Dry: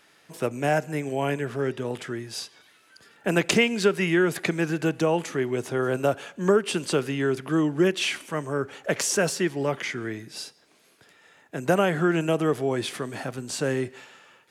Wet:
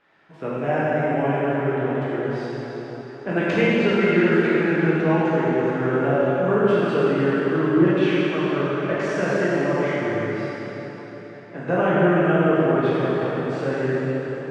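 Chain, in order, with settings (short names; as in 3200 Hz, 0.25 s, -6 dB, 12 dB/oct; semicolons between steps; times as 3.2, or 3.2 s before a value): LPF 2000 Hz 12 dB/oct; notches 50/100/150 Hz; plate-style reverb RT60 4.5 s, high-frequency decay 0.8×, DRR -10 dB; gain -4.5 dB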